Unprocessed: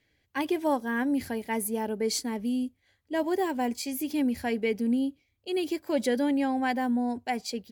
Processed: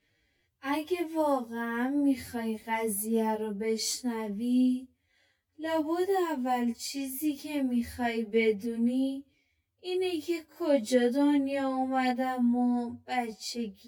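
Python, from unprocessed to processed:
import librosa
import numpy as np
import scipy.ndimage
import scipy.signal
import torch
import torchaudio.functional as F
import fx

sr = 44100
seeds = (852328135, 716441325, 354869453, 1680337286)

y = fx.dynamic_eq(x, sr, hz=1600.0, q=6.6, threshold_db=-50.0, ratio=4.0, max_db=-4)
y = fx.stretch_vocoder(y, sr, factor=1.8)
y = fx.detune_double(y, sr, cents=12)
y = y * librosa.db_to_amplitude(3.0)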